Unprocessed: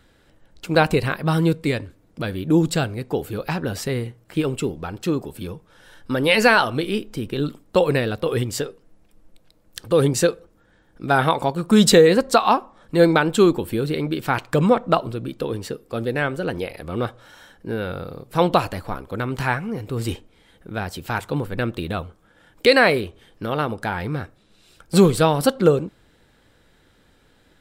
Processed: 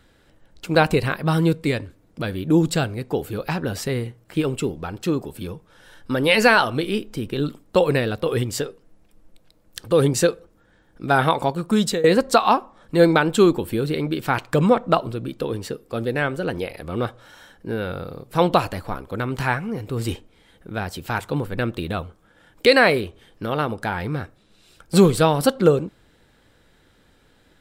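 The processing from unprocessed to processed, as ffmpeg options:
ffmpeg -i in.wav -filter_complex "[0:a]asplit=2[link_01][link_02];[link_01]atrim=end=12.04,asetpts=PTS-STARTPTS,afade=type=out:start_time=11.51:duration=0.53:silence=0.133352[link_03];[link_02]atrim=start=12.04,asetpts=PTS-STARTPTS,afade=type=in:duration=0.004:curve=hsin:silence=0.133352[link_04];[link_03][link_04]concat=n=2:v=0:a=1" out.wav

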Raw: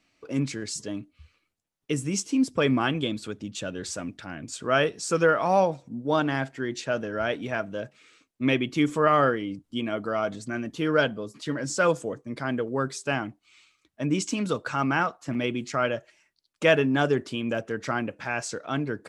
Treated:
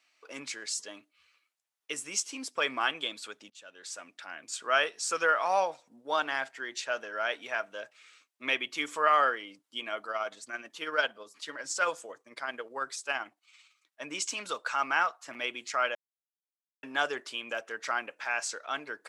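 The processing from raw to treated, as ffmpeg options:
ffmpeg -i in.wav -filter_complex "[0:a]asettb=1/sr,asplit=3[link_01][link_02][link_03];[link_01]atrim=end=10.054[link_04];[link_02]atrim=start=10.05:end=14.01,asetpts=PTS-STARTPTS,afade=type=in:duration=0.004:curve=qsin,afade=type=out:start_time=3.956:duration=0.004:curve=qsin,tremolo=f=18:d=0.43[link_05];[link_03]atrim=start=14.006[link_06];[link_04][link_05]acrossfade=duration=0.004:curve1=hsin:curve2=qsin[link_07];[link_07][link_06]acrossfade=duration=0.004:curve1=qsin:curve2=hsin,asplit=4[link_08][link_09][link_10][link_11];[link_08]atrim=end=3.5,asetpts=PTS-STARTPTS,afade=type=out:start_time=3.496:duration=0.004:curve=hsin:silence=0.0891251[link_12];[link_09]atrim=start=3.5:end=15.95,asetpts=PTS-STARTPTS,afade=type=in:duration=0.88:silence=0.0891251,afade=type=out:start_time=12.446:duration=0.004:curve=hsin[link_13];[link_10]atrim=start=15.95:end=16.83,asetpts=PTS-STARTPTS,volume=0[link_14];[link_11]atrim=start=16.83,asetpts=PTS-STARTPTS,afade=type=in:duration=0.004:curve=hsin[link_15];[link_12][link_13][link_14][link_15]concat=n=4:v=0:a=1,highpass=860" out.wav

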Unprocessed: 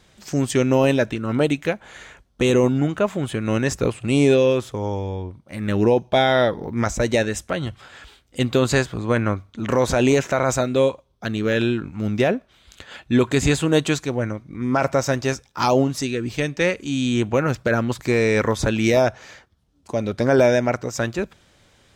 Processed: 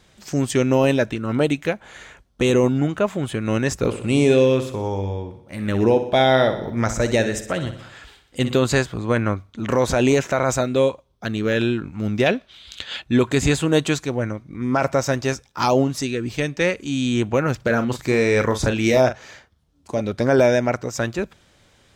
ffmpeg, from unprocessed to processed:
ffmpeg -i in.wav -filter_complex "[0:a]asettb=1/sr,asplit=3[link_01][link_02][link_03];[link_01]atrim=end=3.764[link_04];[link_02]atrim=start=3.76:end=8.55,asetpts=PTS-STARTPTS,afade=type=in:duration=0.004:curve=qsin,afade=type=out:start_time=4.786:duration=0.004:curve=qsin,aecho=1:1:61|122|183|244|305|366:0.282|0.158|0.0884|0.0495|0.0277|0.0155,atrim=end_sample=211239[link_05];[link_03]atrim=start=8.546[link_06];[link_04][link_05]acrossfade=duration=0.004:curve1=hsin:curve2=qsin[link_07];[link_07][link_06]acrossfade=duration=0.004:curve1=qsin:curve2=hsin,asettb=1/sr,asplit=3[link_08][link_09][link_10];[link_08]atrim=end=12.264[link_11];[link_09]atrim=start=12.26:end=13.02,asetpts=PTS-STARTPTS,afade=type=in:duration=0.004:curve=qsin,afade=type=out:start_time=0.756:duration=0.004:curve=qsin,equalizer=frequency=3600:width=0.89:gain=13.5[link_12];[link_10]atrim=start=13.016[link_13];[link_11][link_12]acrossfade=duration=0.004:curve1=hsin:curve2=qsin[link_14];[link_14][link_13]acrossfade=duration=0.004:curve1=qsin:curve2=hsin,asettb=1/sr,asplit=3[link_15][link_16][link_17];[link_15]atrim=end=17.564[link_18];[link_16]atrim=start=17.56:end=20.01,asetpts=PTS-STARTPTS,afade=type=in:duration=0.004:curve=qsin,afade=type=out:start_time=2.446:duration=0.004:curve=qsin,asplit=2[link_19][link_20];[link_20]adelay=39,volume=-9dB[link_21];[link_19][link_21]amix=inputs=2:normalize=0,atrim=end_sample=108045[link_22];[link_17]atrim=start=20.006[link_23];[link_18][link_22]acrossfade=duration=0.004:curve1=hsin:curve2=qsin[link_24];[link_24][link_23]acrossfade=duration=0.004:curve1=qsin:curve2=hsin" out.wav

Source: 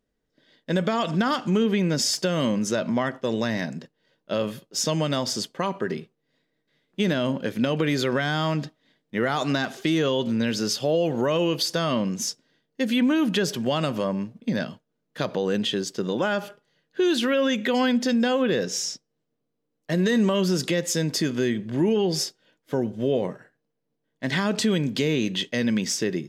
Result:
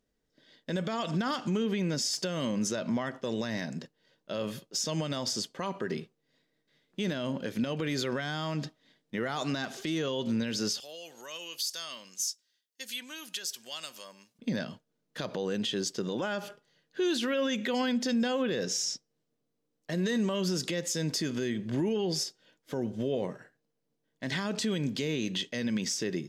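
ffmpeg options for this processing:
ffmpeg -i in.wav -filter_complex "[0:a]asettb=1/sr,asplit=3[link_01][link_02][link_03];[link_01]atrim=end=10.804[link_04];[link_02]atrim=start=10.8:end=14.39,asetpts=PTS-STARTPTS,afade=type=in:duration=0.004:curve=qsin,afade=type=out:start_time=3.586:duration=0.004:curve=qsin,aderivative[link_05];[link_03]atrim=start=14.386[link_06];[link_04][link_05]acrossfade=duration=0.004:curve1=hsin:curve2=qsin[link_07];[link_07][link_06]acrossfade=duration=0.004:curve1=qsin:curve2=hsin,equalizer=frequency=5900:width=0.84:gain=4.5,alimiter=limit=-20dB:level=0:latency=1:release=165,volume=-2dB" out.wav

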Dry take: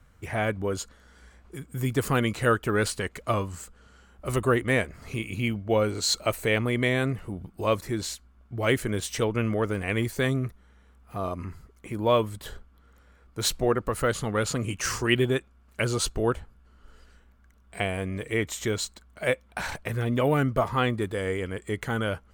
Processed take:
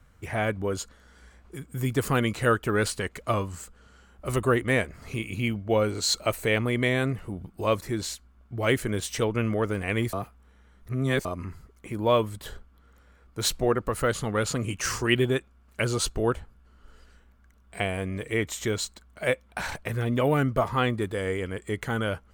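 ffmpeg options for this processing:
ffmpeg -i in.wav -filter_complex "[0:a]asplit=3[link_01][link_02][link_03];[link_01]atrim=end=10.132[link_04];[link_02]atrim=start=10.128:end=11.252,asetpts=PTS-STARTPTS,areverse[link_05];[link_03]atrim=start=11.248[link_06];[link_04][link_05]acrossfade=duration=0.004:curve1=hsin:curve2=hsin[link_07];[link_07][link_06]acrossfade=duration=0.004:curve1=hsin:curve2=hsin" out.wav

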